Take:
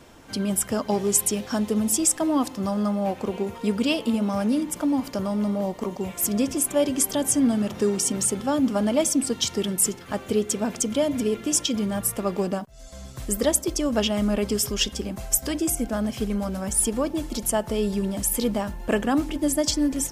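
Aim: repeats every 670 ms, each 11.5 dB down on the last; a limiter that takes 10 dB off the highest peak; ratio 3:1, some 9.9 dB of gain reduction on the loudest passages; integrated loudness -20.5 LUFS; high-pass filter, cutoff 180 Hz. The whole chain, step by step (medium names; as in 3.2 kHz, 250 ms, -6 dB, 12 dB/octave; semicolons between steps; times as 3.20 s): high-pass 180 Hz; compression 3:1, threshold -30 dBFS; peak limiter -25.5 dBFS; feedback delay 670 ms, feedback 27%, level -11.5 dB; trim +14 dB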